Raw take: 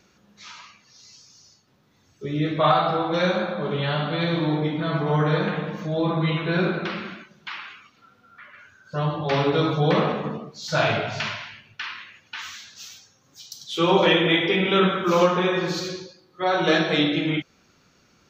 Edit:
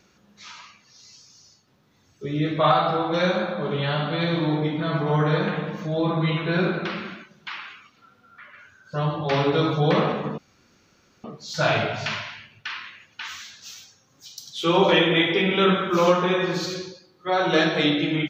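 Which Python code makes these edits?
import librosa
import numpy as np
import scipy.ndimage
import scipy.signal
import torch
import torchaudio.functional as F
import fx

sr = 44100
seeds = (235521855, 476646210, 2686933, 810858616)

y = fx.edit(x, sr, fx.insert_room_tone(at_s=10.38, length_s=0.86), tone=tone)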